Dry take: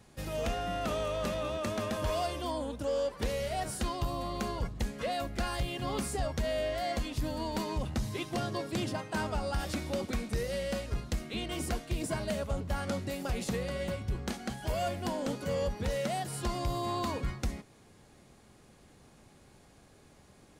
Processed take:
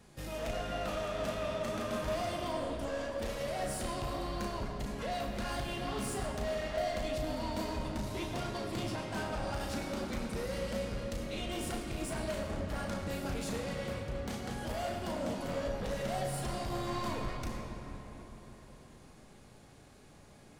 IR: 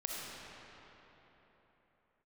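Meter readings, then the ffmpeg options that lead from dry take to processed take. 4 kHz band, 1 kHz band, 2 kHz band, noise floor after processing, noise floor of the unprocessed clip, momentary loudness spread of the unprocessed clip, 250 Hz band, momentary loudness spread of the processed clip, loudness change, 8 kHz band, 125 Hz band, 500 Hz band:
-2.5 dB, -2.5 dB, -1.5 dB, -56 dBFS, -59 dBFS, 3 LU, -2.0 dB, 5 LU, -2.5 dB, -2.5 dB, -3.5 dB, -2.0 dB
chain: -filter_complex "[0:a]flanger=delay=4.2:depth=4.8:regen=-54:speed=1.4:shape=triangular,asoftclip=type=tanh:threshold=-38dB,asplit=2[a][b];[1:a]atrim=start_sample=2205,adelay=35[c];[b][c]afir=irnorm=-1:irlink=0,volume=-3dB[d];[a][d]amix=inputs=2:normalize=0,volume=3dB"

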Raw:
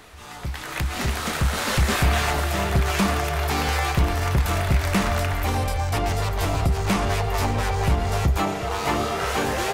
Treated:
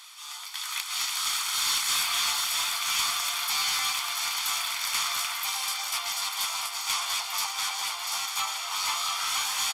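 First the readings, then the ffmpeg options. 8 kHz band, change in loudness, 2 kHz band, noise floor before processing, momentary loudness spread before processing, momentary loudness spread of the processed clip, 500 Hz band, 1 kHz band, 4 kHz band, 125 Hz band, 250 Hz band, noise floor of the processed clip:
+5.5 dB, -3.5 dB, -4.5 dB, -34 dBFS, 4 LU, 5 LU, -25.0 dB, -7.0 dB, +5.0 dB, under -40 dB, under -30 dB, -39 dBFS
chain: -af "highpass=f=1k:w=0.5412,highpass=f=1k:w=1.3066,highshelf=f=2.7k:t=q:w=1.5:g=8,bandreject=f=3.9k:w=17,aecho=1:1:690|1380|2070|2760|3450|4140|4830:0.398|0.235|0.139|0.0818|0.0482|0.0285|0.0168,asoftclip=type=tanh:threshold=-17.5dB,aecho=1:1:0.9:0.47,aresample=32000,aresample=44100,volume=-3.5dB"

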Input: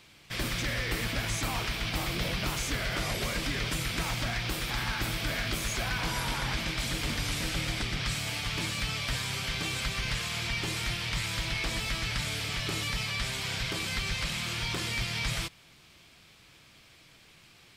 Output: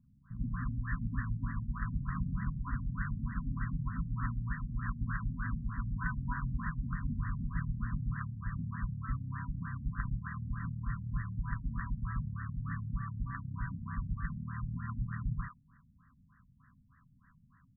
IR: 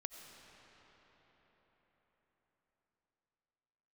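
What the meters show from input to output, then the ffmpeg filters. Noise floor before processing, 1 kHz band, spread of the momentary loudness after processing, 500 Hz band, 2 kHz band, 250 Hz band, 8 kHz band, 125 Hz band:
-57 dBFS, -7.0 dB, 3 LU, under -40 dB, -12.5 dB, -2.0 dB, under -40 dB, 0.0 dB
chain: -filter_complex "[0:a]acrossover=split=420|2400[a][b][c];[c]adelay=40[d];[b]adelay=150[e];[a][e][d]amix=inputs=3:normalize=0,afftfilt=real='re*(1-between(b*sr/4096,270,970))':imag='im*(1-between(b*sr/4096,270,970))':win_size=4096:overlap=0.75,afftfilt=real='re*lt(b*sr/1024,500*pow(2000/500,0.5+0.5*sin(2*PI*3.3*pts/sr)))':imag='im*lt(b*sr/1024,500*pow(2000/500,0.5+0.5*sin(2*PI*3.3*pts/sr)))':win_size=1024:overlap=0.75"

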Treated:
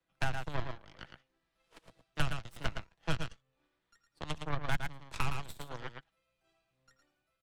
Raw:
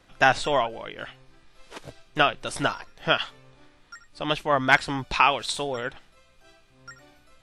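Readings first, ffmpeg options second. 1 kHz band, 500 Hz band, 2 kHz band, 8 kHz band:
-18.0 dB, -18.5 dB, -16.5 dB, -13.0 dB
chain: -filter_complex "[0:a]acrossover=split=280|860|2200[a][b][c][d];[a]alimiter=level_in=10.5dB:limit=-24dB:level=0:latency=1,volume=-10.5dB[e];[e][b][c][d]amix=inputs=4:normalize=0,highpass=43,aecho=1:1:6.1:0.45,aeval=exprs='0.631*(cos(1*acos(clip(val(0)/0.631,-1,1)))-cos(1*PI/2))+0.0126*(cos(3*acos(clip(val(0)/0.631,-1,1)))-cos(3*PI/2))+0.0708*(cos(6*acos(clip(val(0)/0.631,-1,1)))-cos(6*PI/2))+0.0794*(cos(7*acos(clip(val(0)/0.631,-1,1)))-cos(7*PI/2))':c=same,equalizer=f=5.3k:w=1.5:g=-2.5,dynaudnorm=f=290:g=7:m=9dB,aecho=1:1:111:0.447,acrossover=split=150[f][g];[g]acompressor=threshold=-40dB:ratio=3[h];[f][h]amix=inputs=2:normalize=0,volume=-1dB"

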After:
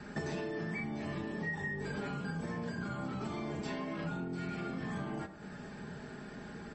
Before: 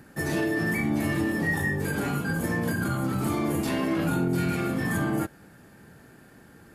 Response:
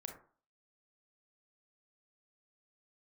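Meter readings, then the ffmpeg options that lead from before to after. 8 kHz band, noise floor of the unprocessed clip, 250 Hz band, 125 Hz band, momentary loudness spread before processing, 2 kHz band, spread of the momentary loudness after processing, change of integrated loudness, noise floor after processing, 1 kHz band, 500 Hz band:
-18.0 dB, -53 dBFS, -12.0 dB, -12.0 dB, 3 LU, -11.5 dB, 9 LU, -12.5 dB, -48 dBFS, -9.5 dB, -10.0 dB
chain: -filter_complex "[0:a]aecho=1:1:4.8:0.52,asplit=2[a][b];[1:a]atrim=start_sample=2205[c];[b][c]afir=irnorm=-1:irlink=0,volume=-3dB[d];[a][d]amix=inputs=2:normalize=0,acompressor=threshold=-37dB:ratio=8,adynamicequalizer=threshold=0.00355:dfrequency=260:dqfactor=2.5:tfrequency=260:tqfactor=2.5:attack=5:release=100:ratio=0.375:range=1.5:mode=cutabove:tftype=bell,bandreject=f=6.8k:w=5.8,volume=2dB" -ar 32000 -c:a libmp3lame -b:a 32k

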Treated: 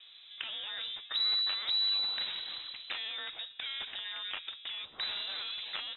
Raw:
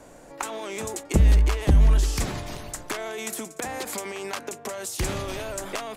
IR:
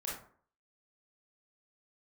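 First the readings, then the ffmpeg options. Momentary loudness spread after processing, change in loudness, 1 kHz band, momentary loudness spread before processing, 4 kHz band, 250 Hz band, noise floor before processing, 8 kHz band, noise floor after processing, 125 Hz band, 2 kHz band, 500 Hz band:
12 LU, -7.0 dB, -14.5 dB, 14 LU, +8.5 dB, under -30 dB, -48 dBFS, under -40 dB, -55 dBFS, under -40 dB, -6.0 dB, -25.5 dB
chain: -filter_complex "[0:a]lowpass=f=3.4k:t=q:w=0.5098,lowpass=f=3.4k:t=q:w=0.6013,lowpass=f=3.4k:t=q:w=0.9,lowpass=f=3.4k:t=q:w=2.563,afreqshift=-4000,acrossover=split=2600[a][b];[b]acompressor=threshold=-29dB:ratio=4:attack=1:release=60[c];[a][c]amix=inputs=2:normalize=0,volume=-6dB"

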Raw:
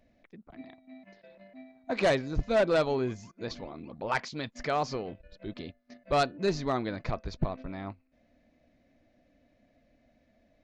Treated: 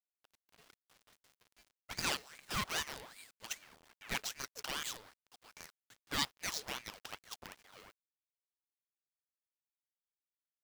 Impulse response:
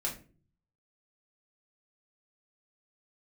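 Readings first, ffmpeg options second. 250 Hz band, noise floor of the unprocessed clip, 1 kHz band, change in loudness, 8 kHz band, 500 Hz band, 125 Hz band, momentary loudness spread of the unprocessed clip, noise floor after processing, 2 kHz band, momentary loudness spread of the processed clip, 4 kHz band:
-17.0 dB, -69 dBFS, -12.0 dB, -8.5 dB, +7.0 dB, -23.5 dB, -16.5 dB, 17 LU, under -85 dBFS, -5.5 dB, 19 LU, +0.5 dB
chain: -af "aderivative,acrusher=bits=8:dc=4:mix=0:aa=0.000001,aeval=exprs='val(0)*sin(2*PI*1400*n/s+1400*0.7/2.5*sin(2*PI*2.5*n/s))':c=same,volume=8.5dB"

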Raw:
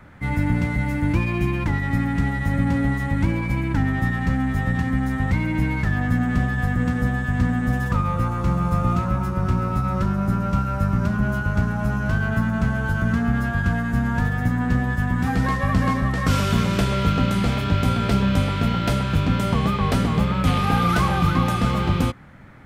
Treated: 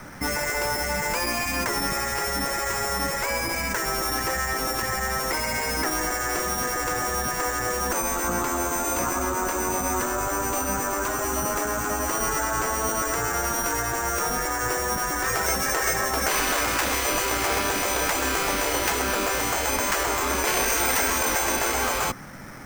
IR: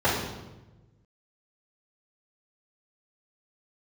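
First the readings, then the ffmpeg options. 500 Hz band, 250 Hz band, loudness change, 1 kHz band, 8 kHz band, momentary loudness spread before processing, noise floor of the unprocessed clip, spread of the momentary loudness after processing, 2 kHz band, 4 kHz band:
+2.5 dB, -11.0 dB, -2.0 dB, +1.5 dB, +18.0 dB, 3 LU, -26 dBFS, 3 LU, +1.5 dB, +5.0 dB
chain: -filter_complex "[0:a]acrossover=split=2700[a][b];[b]acompressor=threshold=-49dB:ratio=4:attack=1:release=60[c];[a][c]amix=inputs=2:normalize=0,acrusher=samples=6:mix=1:aa=0.000001,equalizer=f=75:w=0.6:g=-10.5,afftfilt=real='re*lt(hypot(re,im),0.141)':imag='im*lt(hypot(re,im),0.141)':win_size=1024:overlap=0.75,volume=8.5dB"

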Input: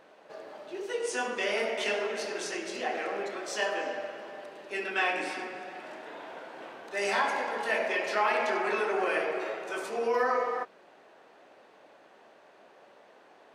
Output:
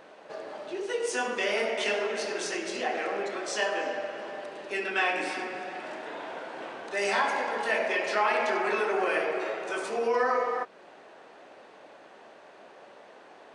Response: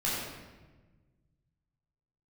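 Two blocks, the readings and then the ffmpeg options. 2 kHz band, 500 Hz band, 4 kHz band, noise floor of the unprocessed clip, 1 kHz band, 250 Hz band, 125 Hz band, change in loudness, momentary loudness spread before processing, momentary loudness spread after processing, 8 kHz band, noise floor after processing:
+2.0 dB, +2.0 dB, +2.0 dB, -58 dBFS, +1.5 dB, +2.0 dB, n/a, +1.0 dB, 16 LU, 13 LU, +2.5 dB, -52 dBFS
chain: -filter_complex "[0:a]asplit=2[a][b];[b]acompressor=threshold=-40dB:ratio=6,volume=-1dB[c];[a][c]amix=inputs=2:normalize=0,aresample=22050,aresample=44100"

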